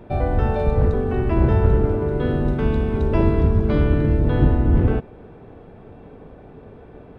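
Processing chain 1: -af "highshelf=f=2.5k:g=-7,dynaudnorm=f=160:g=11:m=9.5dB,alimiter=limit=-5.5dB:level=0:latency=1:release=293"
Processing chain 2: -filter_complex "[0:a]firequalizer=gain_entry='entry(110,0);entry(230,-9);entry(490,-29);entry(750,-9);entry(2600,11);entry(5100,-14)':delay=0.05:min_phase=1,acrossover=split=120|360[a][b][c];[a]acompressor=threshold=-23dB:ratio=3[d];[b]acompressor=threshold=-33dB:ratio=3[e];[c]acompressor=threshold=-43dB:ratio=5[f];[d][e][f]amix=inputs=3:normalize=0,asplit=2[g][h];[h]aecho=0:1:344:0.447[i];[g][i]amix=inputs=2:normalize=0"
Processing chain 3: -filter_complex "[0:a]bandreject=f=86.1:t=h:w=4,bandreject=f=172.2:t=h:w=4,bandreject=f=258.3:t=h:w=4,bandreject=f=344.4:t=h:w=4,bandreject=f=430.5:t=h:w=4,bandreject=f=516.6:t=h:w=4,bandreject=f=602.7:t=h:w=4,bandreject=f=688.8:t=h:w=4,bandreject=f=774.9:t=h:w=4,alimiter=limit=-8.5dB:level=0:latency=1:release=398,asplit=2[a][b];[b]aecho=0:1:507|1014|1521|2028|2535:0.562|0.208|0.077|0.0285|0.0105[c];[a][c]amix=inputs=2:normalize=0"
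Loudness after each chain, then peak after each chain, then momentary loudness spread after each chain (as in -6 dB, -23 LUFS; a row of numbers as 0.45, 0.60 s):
-18.0, -26.5, -20.5 LUFS; -5.5, -12.0, -5.5 dBFS; 19, 4, 14 LU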